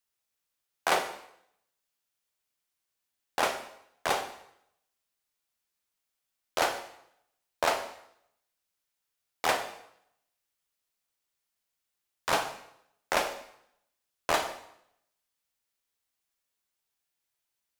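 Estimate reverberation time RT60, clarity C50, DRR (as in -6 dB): 0.70 s, 9.0 dB, 6.0 dB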